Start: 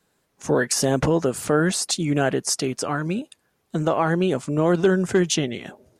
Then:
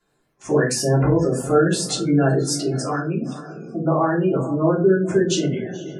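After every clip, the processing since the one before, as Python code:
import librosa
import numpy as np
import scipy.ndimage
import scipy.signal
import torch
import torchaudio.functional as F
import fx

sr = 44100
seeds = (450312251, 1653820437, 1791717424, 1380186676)

y = fx.echo_diffused(x, sr, ms=473, feedback_pct=45, wet_db=-12.5)
y = fx.spec_gate(y, sr, threshold_db=-20, keep='strong')
y = fx.room_shoebox(y, sr, seeds[0], volume_m3=140.0, walls='furnished', distance_m=3.1)
y = y * 10.0 ** (-6.5 / 20.0)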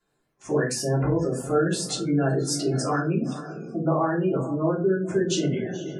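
y = fx.rider(x, sr, range_db=4, speed_s=0.5)
y = y * 10.0 ** (-4.5 / 20.0)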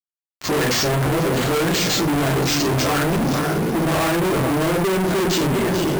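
y = fx.fuzz(x, sr, gain_db=43.0, gate_db=-48.0)
y = np.repeat(y[::4], 4)[:len(y)]
y = y * 10.0 ** (-5.0 / 20.0)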